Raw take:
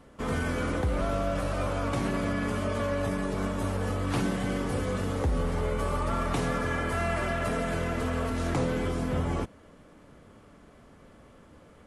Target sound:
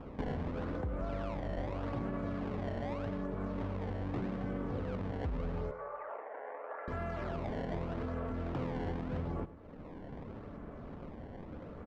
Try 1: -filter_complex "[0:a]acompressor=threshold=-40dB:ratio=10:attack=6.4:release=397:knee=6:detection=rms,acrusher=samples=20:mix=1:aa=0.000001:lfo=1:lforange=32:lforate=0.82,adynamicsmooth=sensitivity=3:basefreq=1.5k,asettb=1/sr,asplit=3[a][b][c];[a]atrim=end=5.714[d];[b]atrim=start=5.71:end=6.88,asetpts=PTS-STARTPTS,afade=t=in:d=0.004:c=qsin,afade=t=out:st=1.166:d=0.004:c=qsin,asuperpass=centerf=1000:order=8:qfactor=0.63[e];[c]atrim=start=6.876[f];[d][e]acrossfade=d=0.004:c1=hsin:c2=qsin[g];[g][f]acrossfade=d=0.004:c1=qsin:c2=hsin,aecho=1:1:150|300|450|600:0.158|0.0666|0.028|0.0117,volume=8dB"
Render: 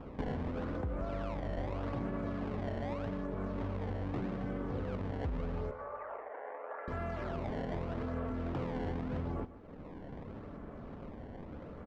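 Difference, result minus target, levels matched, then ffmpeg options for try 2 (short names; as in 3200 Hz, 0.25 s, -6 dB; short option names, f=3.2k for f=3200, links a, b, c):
echo 49 ms late
-filter_complex "[0:a]acompressor=threshold=-40dB:ratio=10:attack=6.4:release=397:knee=6:detection=rms,acrusher=samples=20:mix=1:aa=0.000001:lfo=1:lforange=32:lforate=0.82,adynamicsmooth=sensitivity=3:basefreq=1.5k,asettb=1/sr,asplit=3[a][b][c];[a]atrim=end=5.714[d];[b]atrim=start=5.71:end=6.88,asetpts=PTS-STARTPTS,afade=t=in:d=0.004:c=qsin,afade=t=out:st=1.166:d=0.004:c=qsin,asuperpass=centerf=1000:order=8:qfactor=0.63[e];[c]atrim=start=6.876[f];[d][e]acrossfade=d=0.004:c1=hsin:c2=qsin[g];[g][f]acrossfade=d=0.004:c1=qsin:c2=hsin,aecho=1:1:101|202|303|404:0.158|0.0666|0.028|0.0117,volume=8dB"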